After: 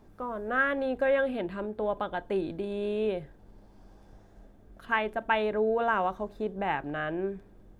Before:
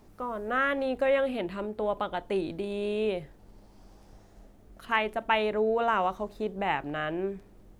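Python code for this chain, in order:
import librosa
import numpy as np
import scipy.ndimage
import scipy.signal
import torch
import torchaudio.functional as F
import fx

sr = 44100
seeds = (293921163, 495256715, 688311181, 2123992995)

y = fx.high_shelf(x, sr, hz=2100.0, db=-8.0)
y = fx.small_body(y, sr, hz=(1600.0, 3500.0), ring_ms=45, db=10)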